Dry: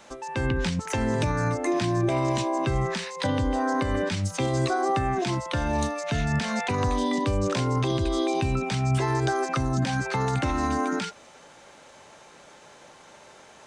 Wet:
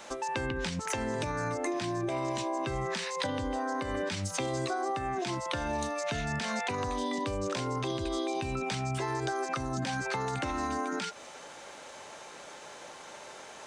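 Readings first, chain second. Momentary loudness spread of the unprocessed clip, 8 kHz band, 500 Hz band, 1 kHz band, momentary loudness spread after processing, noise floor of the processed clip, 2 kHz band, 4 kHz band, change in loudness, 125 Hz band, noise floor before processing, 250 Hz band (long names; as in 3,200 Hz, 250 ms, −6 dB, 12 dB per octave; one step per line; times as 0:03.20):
3 LU, −2.5 dB, −6.0 dB, −5.0 dB, 14 LU, −48 dBFS, −4.5 dB, −3.5 dB, −7.0 dB, −11.5 dB, −51 dBFS, −8.0 dB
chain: bass and treble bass −7 dB, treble +1 dB
downward compressor 5 to 1, threshold −34 dBFS, peak gain reduction 11.5 dB
level +3.5 dB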